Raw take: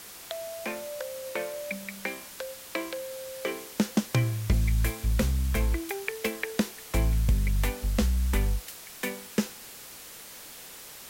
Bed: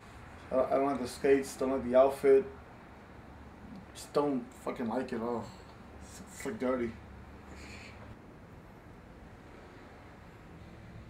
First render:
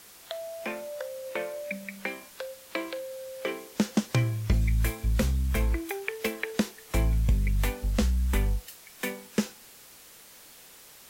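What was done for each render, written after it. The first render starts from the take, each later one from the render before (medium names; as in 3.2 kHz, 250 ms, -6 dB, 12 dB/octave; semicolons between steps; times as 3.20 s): noise print and reduce 6 dB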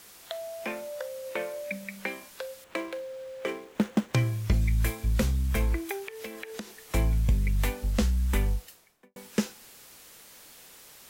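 2.64–4.14 s: median filter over 9 samples; 6.03–6.81 s: compression 4:1, threshold -36 dBFS; 8.50–9.16 s: studio fade out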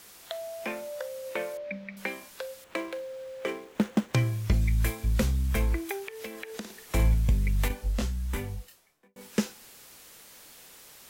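1.57–1.97 s: distance through air 260 m; 6.51–7.14 s: flutter echo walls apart 9.5 m, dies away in 0.38 s; 7.68–9.21 s: detune thickener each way 18 cents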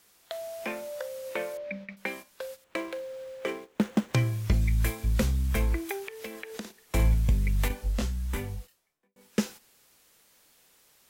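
gate -42 dBFS, range -11 dB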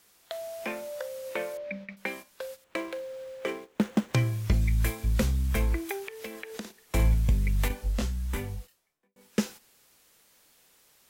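no audible change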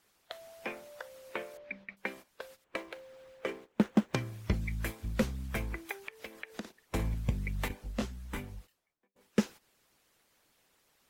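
treble shelf 4 kHz -8 dB; harmonic-percussive split harmonic -14 dB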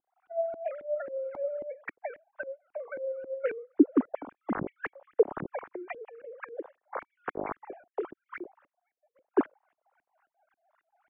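formants replaced by sine waves; LFO low-pass saw up 3.7 Hz 300–1700 Hz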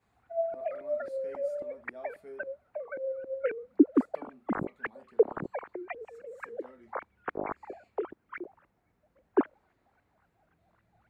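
add bed -22.5 dB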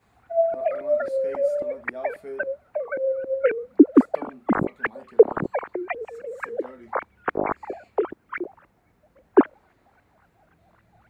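trim +10 dB; peak limiter -1 dBFS, peak gain reduction 3 dB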